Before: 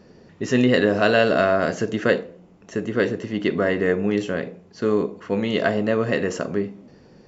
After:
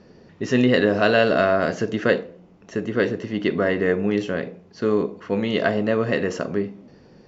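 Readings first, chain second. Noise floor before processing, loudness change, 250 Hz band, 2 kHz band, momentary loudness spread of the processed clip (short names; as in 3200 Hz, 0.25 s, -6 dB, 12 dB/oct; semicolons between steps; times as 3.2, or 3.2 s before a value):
-51 dBFS, 0.0 dB, 0.0 dB, 0.0 dB, 10 LU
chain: LPF 6400 Hz 24 dB/oct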